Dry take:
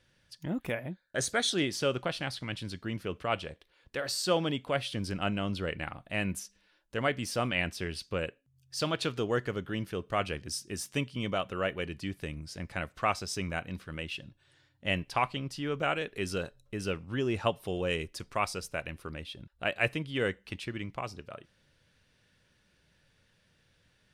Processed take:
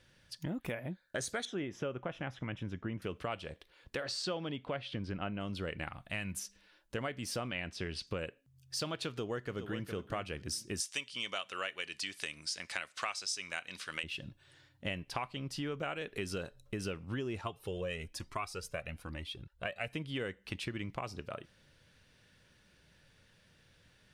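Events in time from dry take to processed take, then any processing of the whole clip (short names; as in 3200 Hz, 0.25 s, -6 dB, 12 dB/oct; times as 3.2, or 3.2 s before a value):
1.45–3.02 running mean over 10 samples
4.03–5.39 LPF 5800 Hz -> 2400 Hz
5.89–6.36 bell 400 Hz -8.5 dB 2 oct
7.4–8.07 LPF 6800 Hz
9.07–9.85 echo throw 0.41 s, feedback 15%, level -11.5 dB
10.8–14.04 weighting filter ITU-R 468
17.41–19.94 cascading flanger rising 1.1 Hz
whole clip: compressor 6:1, threshold -38 dBFS; gain +3 dB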